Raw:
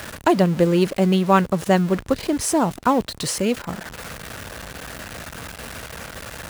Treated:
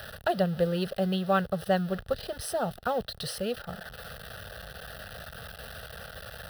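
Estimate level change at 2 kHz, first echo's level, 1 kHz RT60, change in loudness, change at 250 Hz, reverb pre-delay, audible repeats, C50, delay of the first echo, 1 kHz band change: −7.5 dB, no echo audible, no reverb audible, −10.0 dB, −12.5 dB, no reverb audible, no echo audible, no reverb audible, no echo audible, −10.0 dB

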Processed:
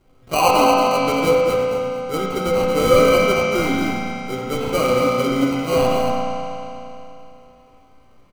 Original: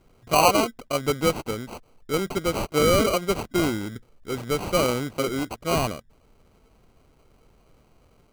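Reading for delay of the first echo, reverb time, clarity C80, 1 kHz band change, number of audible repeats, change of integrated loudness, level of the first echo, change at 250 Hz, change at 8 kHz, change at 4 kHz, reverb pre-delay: 230 ms, 3.0 s, −3.0 dB, +7.0 dB, 1, +6.0 dB, −5.5 dB, +6.0 dB, 0.0 dB, +3.5 dB, 4 ms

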